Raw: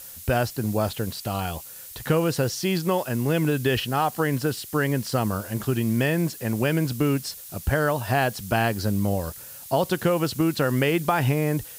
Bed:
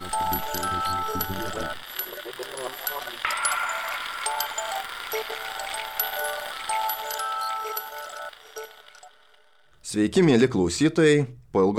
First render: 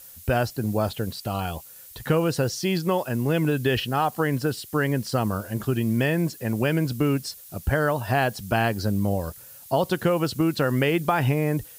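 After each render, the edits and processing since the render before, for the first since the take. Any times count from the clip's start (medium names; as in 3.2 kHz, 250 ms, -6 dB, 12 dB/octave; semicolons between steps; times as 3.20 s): noise reduction 6 dB, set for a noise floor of -41 dBFS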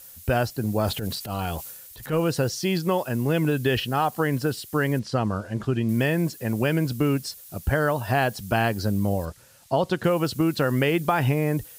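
0.79–2.20 s: transient shaper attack -10 dB, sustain +7 dB; 4.99–5.89 s: distance through air 80 m; 9.25–10.04 s: distance through air 53 m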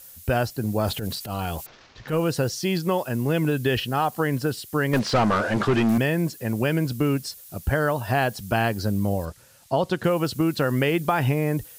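1.66–2.08 s: CVSD coder 32 kbps; 4.93–5.98 s: overdrive pedal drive 27 dB, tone 2.2 kHz, clips at -12 dBFS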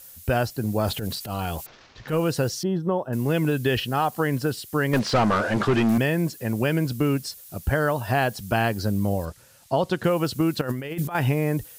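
2.63–3.13 s: boxcar filter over 19 samples; 10.61–11.15 s: compressor with a negative ratio -27 dBFS, ratio -0.5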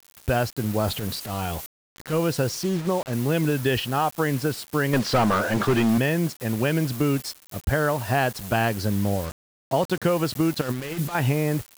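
word length cut 6-bit, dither none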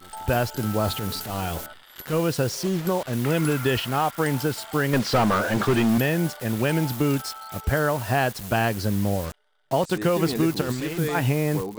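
add bed -11 dB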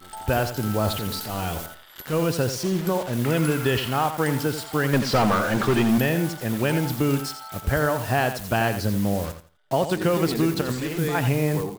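feedback delay 85 ms, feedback 22%, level -10 dB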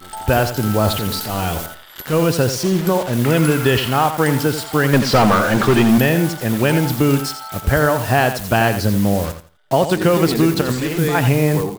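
trim +7 dB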